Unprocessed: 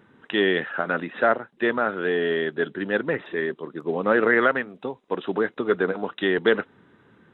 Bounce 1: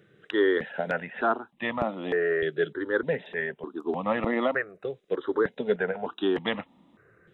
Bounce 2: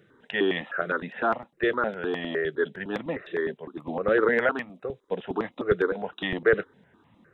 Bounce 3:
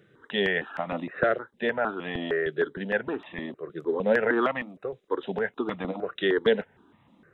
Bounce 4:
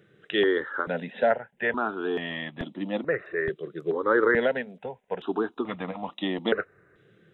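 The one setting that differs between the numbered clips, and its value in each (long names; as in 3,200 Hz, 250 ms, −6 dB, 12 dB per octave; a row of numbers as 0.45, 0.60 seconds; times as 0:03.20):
step-sequenced phaser, speed: 3.3, 9.8, 6.5, 2.3 Hertz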